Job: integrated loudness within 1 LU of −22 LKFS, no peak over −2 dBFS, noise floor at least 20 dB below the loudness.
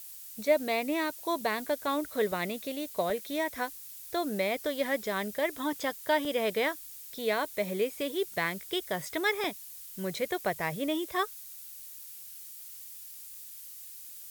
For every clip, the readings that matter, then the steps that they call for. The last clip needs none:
number of dropouts 4; longest dropout 2.4 ms; background noise floor −46 dBFS; target noise floor −52 dBFS; integrated loudness −31.5 LKFS; sample peak −13.0 dBFS; target loudness −22.0 LKFS
→ repair the gap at 0:02.32/0:03.10/0:06.25/0:09.44, 2.4 ms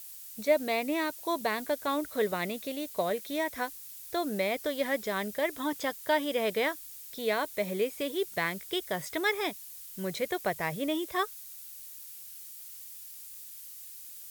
number of dropouts 0; background noise floor −46 dBFS; target noise floor −52 dBFS
→ noise reduction from a noise print 6 dB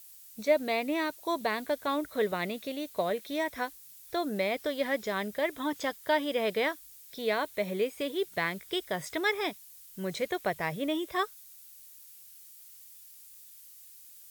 background noise floor −52 dBFS; integrated loudness −31.5 LKFS; sample peak −13.0 dBFS; target loudness −22.0 LKFS
→ level +9.5 dB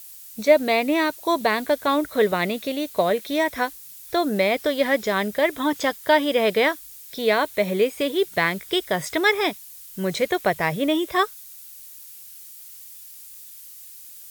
integrated loudness −22.0 LKFS; sample peak −3.5 dBFS; background noise floor −43 dBFS

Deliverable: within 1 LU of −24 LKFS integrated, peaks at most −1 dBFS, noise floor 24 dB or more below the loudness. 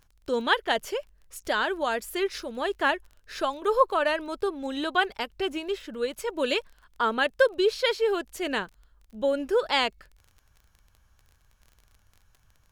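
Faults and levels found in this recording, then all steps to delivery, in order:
crackle rate 25 per second; integrated loudness −27.0 LKFS; sample peak −8.0 dBFS; target loudness −24.0 LKFS
→ click removal
level +3 dB

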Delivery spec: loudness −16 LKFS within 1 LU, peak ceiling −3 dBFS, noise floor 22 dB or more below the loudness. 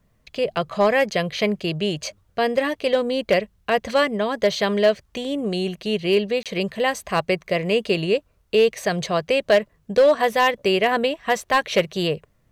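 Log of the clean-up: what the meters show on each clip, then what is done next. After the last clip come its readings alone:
share of clipped samples 0.9%; peaks flattened at −10.0 dBFS; number of dropouts 1; longest dropout 27 ms; integrated loudness −21.5 LKFS; sample peak −10.0 dBFS; target loudness −16.0 LKFS
→ clipped peaks rebuilt −10 dBFS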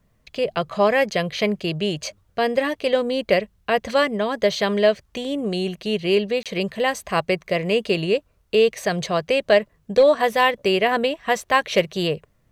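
share of clipped samples 0.0%; number of dropouts 1; longest dropout 27 ms
→ repair the gap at 0:06.43, 27 ms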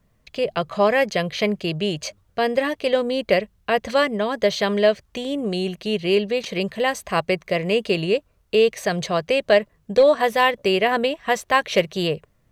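number of dropouts 0; integrated loudness −21.5 LKFS; sample peak −3.5 dBFS; target loudness −16.0 LKFS
→ level +5.5 dB
brickwall limiter −3 dBFS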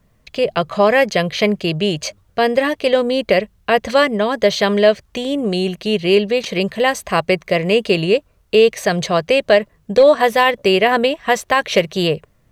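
integrated loudness −16.5 LKFS; sample peak −3.0 dBFS; background noise floor −58 dBFS

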